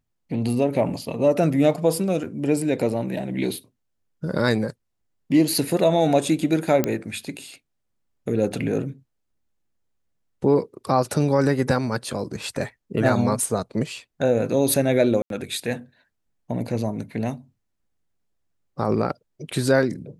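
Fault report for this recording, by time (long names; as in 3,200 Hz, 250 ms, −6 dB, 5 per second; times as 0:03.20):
0:06.84: click −7 dBFS
0:15.22–0:15.30: drop-out 82 ms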